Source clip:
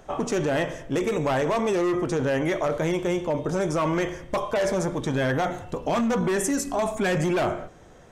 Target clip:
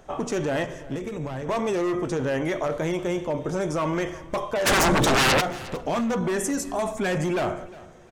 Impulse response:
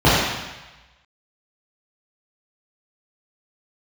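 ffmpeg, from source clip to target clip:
-filter_complex "[0:a]asettb=1/sr,asplit=3[a][b][c];[a]atrim=end=0.644[d];[b]atrim=start=0.64:end=1.49,asetpts=PTS-STARTPTS,afade=t=in:d=0.004:c=qsin,afade=t=out:st=0.846:d=0.004:c=qsin,acrossover=split=230[e][f];[f]acompressor=threshold=-31dB:ratio=10[g];[e][g]amix=inputs=2:normalize=0[h];[c]atrim=start=1.486[i];[d][h]acrossfade=d=0.004:c1=hsin:c2=qsin[j];[j][i]acrossfade=d=0.004:c1=qsin:c2=hsin,asplit=3[k][l][m];[k]afade=t=out:st=4.65:d=0.02[n];[l]aeval=exprs='0.188*sin(PI/2*5.62*val(0)/0.188)':c=same,afade=t=in:st=4.65:d=0.02,afade=t=out:st=5.4:d=0.02[o];[m]afade=t=in:st=5.4:d=0.02[p];[n][o][p]amix=inputs=3:normalize=0,aecho=1:1:356|712:0.106|0.0297,volume=-1.5dB"

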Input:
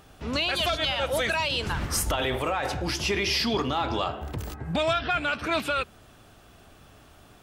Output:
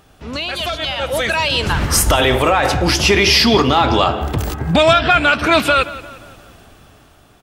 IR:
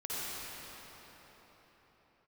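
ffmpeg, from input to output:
-filter_complex "[0:a]dynaudnorm=f=420:g=7:m=12dB,asplit=2[a][b];[b]adelay=176,lowpass=f=4.2k:p=1,volume=-16dB,asplit=2[c][d];[d]adelay=176,lowpass=f=4.2k:p=1,volume=0.49,asplit=2[e][f];[f]adelay=176,lowpass=f=4.2k:p=1,volume=0.49,asplit=2[g][h];[h]adelay=176,lowpass=f=4.2k:p=1,volume=0.49[i];[c][e][g][i]amix=inputs=4:normalize=0[j];[a][j]amix=inputs=2:normalize=0,volume=2.5dB"

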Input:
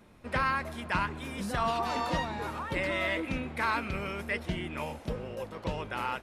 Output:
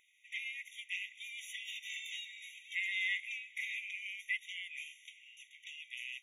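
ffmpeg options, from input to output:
-filter_complex "[0:a]bandreject=f=76.24:t=h:w=4,bandreject=f=152.48:t=h:w=4,bandreject=f=228.72:t=h:w=4,asplit=2[a][b];[b]asetrate=22050,aresample=44100,atempo=2,volume=-1dB[c];[a][c]amix=inputs=2:normalize=0,afftfilt=real='re*eq(mod(floor(b*sr/1024/1900),2),1)':imag='im*eq(mod(floor(b*sr/1024/1900),2),1)':win_size=1024:overlap=0.75,volume=-1dB"

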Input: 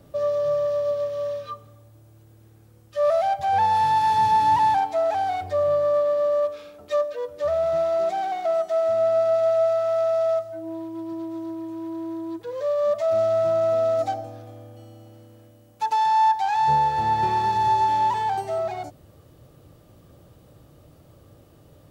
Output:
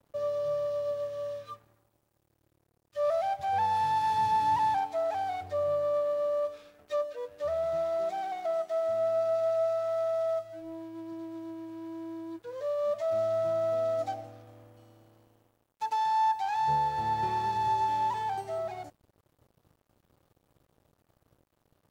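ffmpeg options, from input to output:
-af "aeval=exprs='sgn(val(0))*max(abs(val(0))-0.00335,0)':c=same,volume=-7.5dB"

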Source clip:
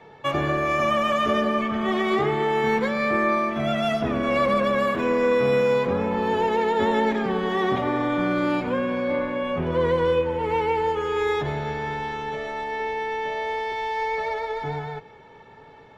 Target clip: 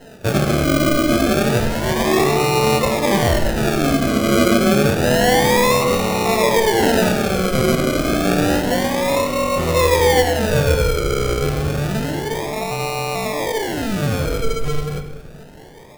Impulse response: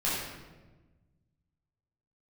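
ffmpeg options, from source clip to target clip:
-filter_complex "[0:a]bandreject=f=60:t=h:w=6,bandreject=f=120:t=h:w=6,bandreject=f=180:t=h:w=6,bandreject=f=240:t=h:w=6,bandreject=f=300:t=h:w=6,bandreject=f=360:t=h:w=6,bandreject=f=420:t=h:w=6,acrusher=samples=38:mix=1:aa=0.000001:lfo=1:lforange=22.8:lforate=0.29,asplit=2[a][b];[1:a]atrim=start_sample=2205[c];[b][c]afir=irnorm=-1:irlink=0,volume=-14dB[d];[a][d]amix=inputs=2:normalize=0,volume=4.5dB"

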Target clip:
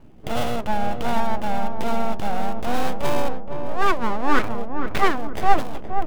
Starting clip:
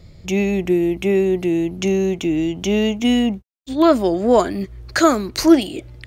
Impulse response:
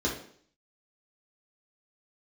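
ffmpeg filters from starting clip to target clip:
-filter_complex "[0:a]lowpass=6k,equalizer=f=2.5k:t=o:w=0.22:g=13,asetrate=52444,aresample=44100,atempo=0.840896,acrossover=split=2000[a][b];[b]acrusher=samples=32:mix=1:aa=0.000001[c];[a][c]amix=inputs=2:normalize=0,aeval=exprs='abs(val(0))':c=same,asplit=2[d][e];[e]adelay=470,lowpass=f=830:p=1,volume=-5dB,asplit=2[f][g];[g]adelay=470,lowpass=f=830:p=1,volume=0.53,asplit=2[h][i];[i]adelay=470,lowpass=f=830:p=1,volume=0.53,asplit=2[j][k];[k]adelay=470,lowpass=f=830:p=1,volume=0.53,asplit=2[l][m];[m]adelay=470,lowpass=f=830:p=1,volume=0.53,asplit=2[n][o];[o]adelay=470,lowpass=f=830:p=1,volume=0.53,asplit=2[p][q];[q]adelay=470,lowpass=f=830:p=1,volume=0.53[r];[f][h][j][l][n][p][r]amix=inputs=7:normalize=0[s];[d][s]amix=inputs=2:normalize=0,volume=-2.5dB"

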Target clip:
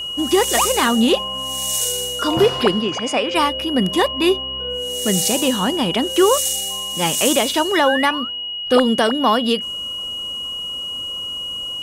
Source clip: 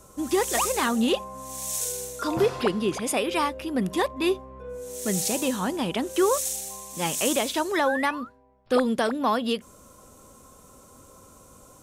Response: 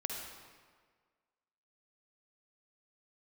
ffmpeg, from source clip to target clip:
-filter_complex "[0:a]aeval=exprs='val(0)+0.0251*sin(2*PI*2900*n/s)':c=same,asplit=3[a][b][c];[a]afade=t=out:st=2.8:d=0.02[d];[b]highpass=100,equalizer=f=180:t=q:w=4:g=-8,equalizer=f=370:t=q:w=4:g=-8,equalizer=f=3.7k:t=q:w=4:g=-9,lowpass=f=6.7k:w=0.5412,lowpass=f=6.7k:w=1.3066,afade=t=in:st=2.8:d=0.02,afade=t=out:st=3.34:d=0.02[e];[c]afade=t=in:st=3.34:d=0.02[f];[d][e][f]amix=inputs=3:normalize=0,volume=7.5dB"

